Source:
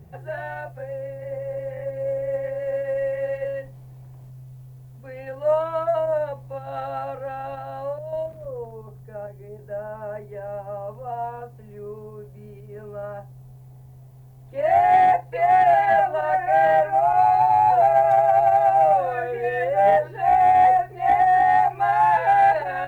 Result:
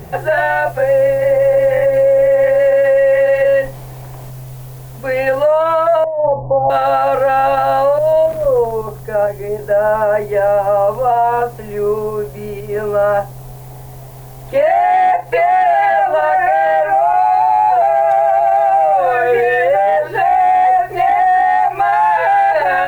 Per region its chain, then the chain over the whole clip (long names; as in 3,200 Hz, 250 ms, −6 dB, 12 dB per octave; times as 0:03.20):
0:06.04–0:06.70: Butterworth low-pass 1,000 Hz 72 dB per octave + compressor whose output falls as the input rises −29 dBFS, ratio −0.5
whole clip: parametric band 110 Hz −13.5 dB 2.4 octaves; downward compressor 12 to 1, threshold −28 dBFS; boost into a limiter +28.5 dB; level −5 dB